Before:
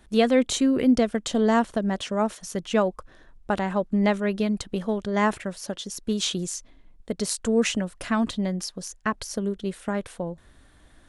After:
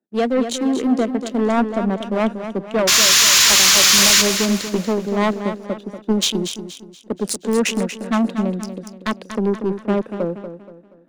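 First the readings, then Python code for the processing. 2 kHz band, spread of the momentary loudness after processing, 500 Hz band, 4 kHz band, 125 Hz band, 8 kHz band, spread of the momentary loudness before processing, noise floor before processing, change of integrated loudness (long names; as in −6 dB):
+11.0 dB, 18 LU, +4.0 dB, +17.0 dB, +4.5 dB, +17.5 dB, 12 LU, −55 dBFS, +9.5 dB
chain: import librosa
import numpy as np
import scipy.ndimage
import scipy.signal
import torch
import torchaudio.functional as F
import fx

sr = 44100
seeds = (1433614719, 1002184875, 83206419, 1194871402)

y = fx.wiener(x, sr, points=41)
y = fx.rider(y, sr, range_db=5, speed_s=0.5)
y = scipy.signal.sosfilt(scipy.signal.butter(4, 210.0, 'highpass', fs=sr, output='sos'), y)
y = fx.spec_paint(y, sr, seeds[0], shape='noise', start_s=2.87, length_s=1.35, low_hz=960.0, high_hz=7400.0, level_db=-20.0)
y = fx.fold_sine(y, sr, drive_db=10, ceiling_db=-5.5)
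y = fx.leveller(y, sr, passes=1)
y = fx.echo_feedback(y, sr, ms=238, feedback_pct=49, wet_db=-8)
y = fx.band_widen(y, sr, depth_pct=40)
y = y * 10.0 ** (-7.5 / 20.0)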